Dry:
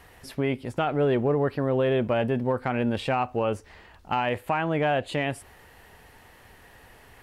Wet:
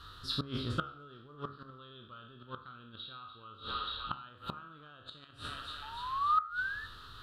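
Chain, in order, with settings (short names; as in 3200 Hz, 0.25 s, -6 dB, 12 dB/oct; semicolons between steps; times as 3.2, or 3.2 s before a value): spectral trails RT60 0.66 s; 1.78–4.29 resonant high shelf 5000 Hz -9.5 dB, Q 3; thinning echo 0.293 s, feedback 68%, high-pass 710 Hz, level -13 dB; 5.82–6.86 painted sound rise 850–1800 Hz -35 dBFS; EQ curve 110 Hz 0 dB, 190 Hz -6 dB, 330 Hz -6 dB, 530 Hz -13 dB, 810 Hz -19 dB, 1300 Hz +13 dB, 2100 Hz -22 dB, 3800 Hz +14 dB, 5600 Hz -6 dB, 10000 Hz -13 dB; flipped gate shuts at -20 dBFS, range -25 dB; de-hum 69.09 Hz, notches 36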